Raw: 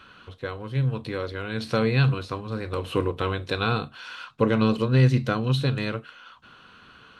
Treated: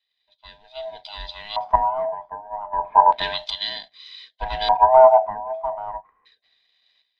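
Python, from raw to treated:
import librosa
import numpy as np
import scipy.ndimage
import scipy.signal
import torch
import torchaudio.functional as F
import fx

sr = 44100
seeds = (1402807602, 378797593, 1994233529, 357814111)

y = fx.band_swap(x, sr, width_hz=500)
y = fx.high_shelf(y, sr, hz=4000.0, db=7.0)
y = fx.leveller(y, sr, passes=1)
y = fx.filter_lfo_lowpass(y, sr, shape='square', hz=0.32, low_hz=970.0, high_hz=3900.0, q=4.7)
y = fx.tremolo_shape(y, sr, shape='saw_up', hz=0.57, depth_pct=65)
y = fx.band_widen(y, sr, depth_pct=70)
y = y * librosa.db_to_amplitude(-6.5)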